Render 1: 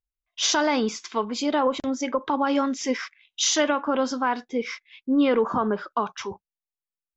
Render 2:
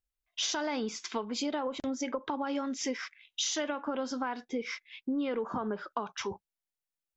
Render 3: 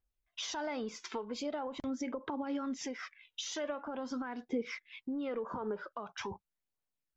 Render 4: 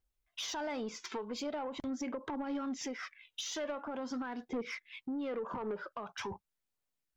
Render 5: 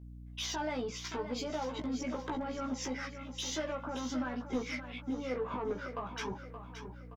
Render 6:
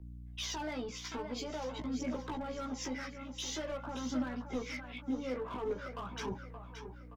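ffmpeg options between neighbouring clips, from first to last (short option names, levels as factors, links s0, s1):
-af "equalizer=f=1100:w=4.9:g=-3.5,acompressor=threshold=0.0282:ratio=5"
-af "highshelf=f=2500:g=-9.5,alimiter=level_in=2.24:limit=0.0631:level=0:latency=1:release=252,volume=0.447,aphaser=in_gain=1:out_gain=1:delay=2.3:decay=0.41:speed=0.44:type=triangular,volume=1.19"
-af "asoftclip=type=tanh:threshold=0.0237,volume=1.19"
-filter_complex "[0:a]aeval=exprs='val(0)+0.00282*(sin(2*PI*60*n/s)+sin(2*PI*2*60*n/s)/2+sin(2*PI*3*60*n/s)/3+sin(2*PI*4*60*n/s)/4+sin(2*PI*5*60*n/s)/5)':c=same,asplit=2[s0][s1];[s1]adelay=16,volume=0.708[s2];[s0][s2]amix=inputs=2:normalize=0,asplit=2[s3][s4];[s4]aecho=0:1:573|1146|1719|2292|2865:0.316|0.142|0.064|0.0288|0.013[s5];[s3][s5]amix=inputs=2:normalize=0"
-filter_complex "[0:a]aphaser=in_gain=1:out_gain=1:delay=4.1:decay=0.31:speed=0.48:type=triangular,acrossover=split=250|510|3400[s0][s1][s2][s3];[s2]asoftclip=type=hard:threshold=0.0126[s4];[s0][s1][s4][s3]amix=inputs=4:normalize=0,volume=0.794"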